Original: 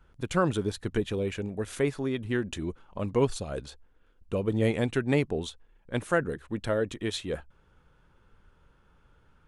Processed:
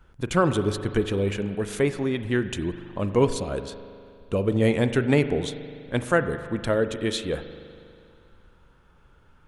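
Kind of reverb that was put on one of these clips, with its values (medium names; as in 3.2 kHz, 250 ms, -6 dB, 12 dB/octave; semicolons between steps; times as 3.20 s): spring tank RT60 2.4 s, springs 40 ms, chirp 55 ms, DRR 10 dB; trim +4.5 dB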